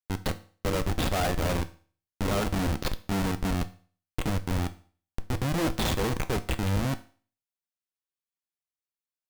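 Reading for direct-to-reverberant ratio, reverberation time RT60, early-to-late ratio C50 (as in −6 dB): 9.5 dB, 0.45 s, 17.5 dB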